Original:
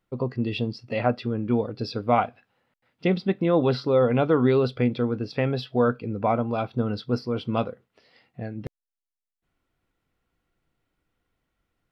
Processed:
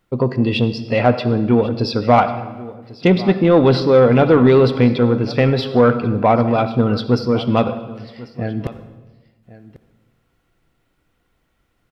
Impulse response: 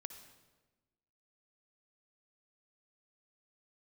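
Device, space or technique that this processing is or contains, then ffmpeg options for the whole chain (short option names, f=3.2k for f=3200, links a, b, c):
saturated reverb return: -filter_complex "[0:a]asplit=2[a][b];[1:a]atrim=start_sample=2205[c];[b][c]afir=irnorm=-1:irlink=0,asoftclip=type=tanh:threshold=-22dB,volume=8.5dB[d];[a][d]amix=inputs=2:normalize=0,aecho=1:1:1094:0.112,volume=2.5dB"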